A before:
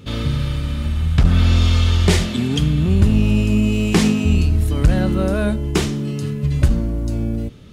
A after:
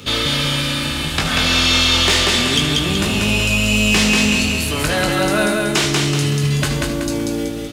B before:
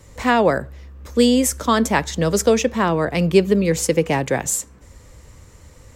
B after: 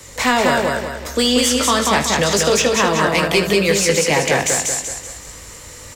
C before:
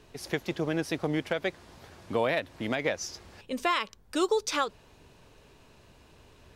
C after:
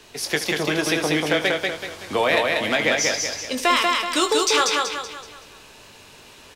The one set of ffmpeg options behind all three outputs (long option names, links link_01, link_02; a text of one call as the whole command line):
ffmpeg -i in.wav -filter_complex "[0:a]acrossover=split=180|510|5500[link_01][link_02][link_03][link_04];[link_01]acompressor=threshold=-27dB:ratio=4[link_05];[link_02]acompressor=threshold=-29dB:ratio=4[link_06];[link_03]acompressor=threshold=-25dB:ratio=4[link_07];[link_04]acompressor=threshold=-41dB:ratio=4[link_08];[link_05][link_06][link_07][link_08]amix=inputs=4:normalize=0,asplit=2[link_09][link_10];[link_10]aecho=0:1:20|77:0.398|0.178[link_11];[link_09][link_11]amix=inputs=2:normalize=0,crystalizer=i=5.5:c=0,lowshelf=frequency=200:gain=-10,asplit=2[link_12][link_13];[link_13]aecho=0:1:189|378|567|756|945:0.708|0.29|0.119|0.0488|0.02[link_14];[link_12][link_14]amix=inputs=2:normalize=0,asoftclip=type=tanh:threshold=-9.5dB,acontrast=87,aemphasis=mode=reproduction:type=50kf" out.wav